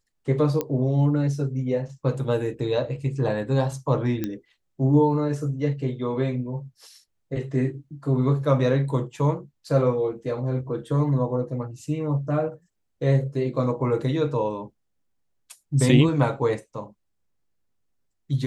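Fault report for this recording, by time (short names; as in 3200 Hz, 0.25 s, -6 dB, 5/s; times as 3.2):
0.61 pop -12 dBFS
4.24 pop -14 dBFS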